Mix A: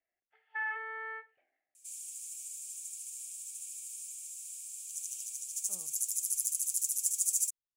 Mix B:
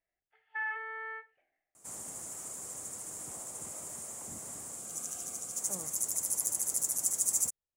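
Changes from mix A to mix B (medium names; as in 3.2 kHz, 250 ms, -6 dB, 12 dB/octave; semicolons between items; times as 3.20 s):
speech +11.5 dB; second sound: remove Chebyshev high-pass 2.3 kHz, order 10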